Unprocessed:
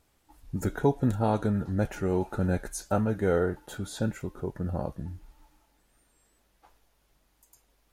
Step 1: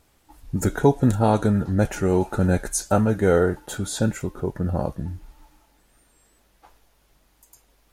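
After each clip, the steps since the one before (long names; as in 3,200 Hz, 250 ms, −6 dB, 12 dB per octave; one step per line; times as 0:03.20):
dynamic equaliser 7,900 Hz, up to +6 dB, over −57 dBFS, Q 0.95
level +7 dB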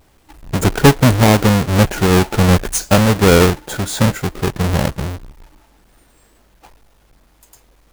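each half-wave held at its own peak
level +3.5 dB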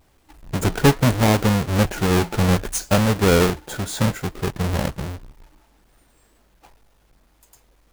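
flanger 0.66 Hz, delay 0.8 ms, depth 8.1 ms, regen −79%
level −1.5 dB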